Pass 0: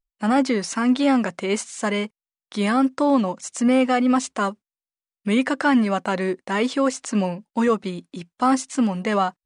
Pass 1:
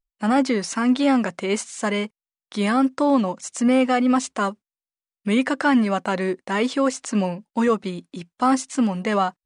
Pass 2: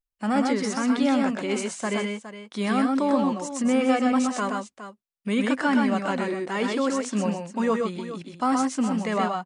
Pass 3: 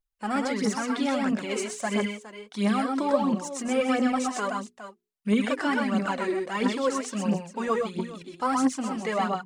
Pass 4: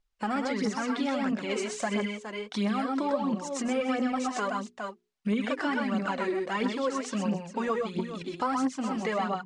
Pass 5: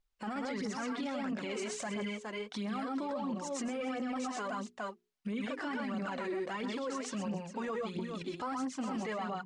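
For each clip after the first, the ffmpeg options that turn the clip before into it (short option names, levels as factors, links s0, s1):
-af anull
-af "aecho=1:1:107|126|414:0.266|0.668|0.251,volume=0.562"
-af "bandreject=f=60:t=h:w=6,bandreject=f=120:t=h:w=6,bandreject=f=180:t=h:w=6,bandreject=f=240:t=h:w=6,bandreject=f=300:t=h:w=6,bandreject=f=360:t=h:w=6,bandreject=f=420:t=h:w=6,aphaser=in_gain=1:out_gain=1:delay=3.1:decay=0.6:speed=1.5:type=triangular,volume=0.708"
-af "lowpass=6300,acompressor=threshold=0.0126:ratio=2.5,volume=2.24"
-af "alimiter=level_in=1.33:limit=0.0631:level=0:latency=1:release=21,volume=0.75,volume=0.708"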